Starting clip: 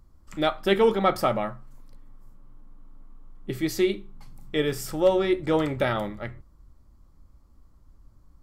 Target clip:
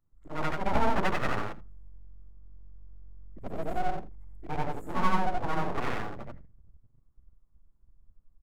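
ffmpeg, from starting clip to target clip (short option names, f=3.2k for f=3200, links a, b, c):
-filter_complex "[0:a]afftfilt=real='re':imag='-im':win_size=8192:overlap=0.75,afwtdn=0.0178,afftfilt=real='re*(1-between(b*sr/4096,2200,6600))':imag='im*(1-between(b*sr/4096,2200,6600))':win_size=4096:overlap=0.75,highshelf=f=4.2k:g=-5,acrossover=split=1700[a][b];[b]acompressor=threshold=-56dB:ratio=6[c];[a][c]amix=inputs=2:normalize=0,aeval=exprs='abs(val(0))':c=same,asplit=2[d][e];[e]aecho=0:1:81:0.1[f];[d][f]amix=inputs=2:normalize=0,volume=2.5dB"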